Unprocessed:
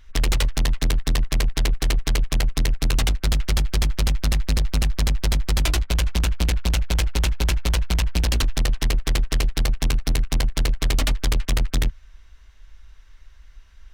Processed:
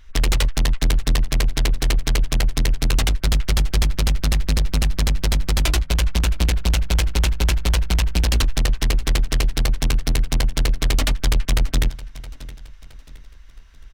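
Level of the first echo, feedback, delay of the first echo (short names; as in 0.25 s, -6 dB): -18.0 dB, 39%, 0.668 s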